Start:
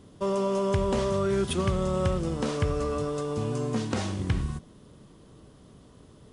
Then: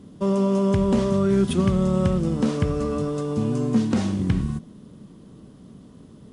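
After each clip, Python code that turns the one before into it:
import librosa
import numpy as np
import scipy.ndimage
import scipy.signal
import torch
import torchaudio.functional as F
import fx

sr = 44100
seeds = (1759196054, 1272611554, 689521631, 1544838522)

y = fx.peak_eq(x, sr, hz=210.0, db=11.5, octaves=1.2)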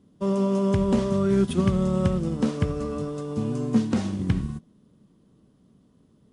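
y = fx.upward_expand(x, sr, threshold_db=-42.0, expansion=1.5)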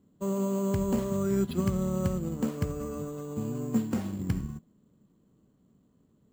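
y = np.repeat(scipy.signal.resample_poly(x, 1, 6), 6)[:len(x)]
y = y * librosa.db_to_amplitude(-6.0)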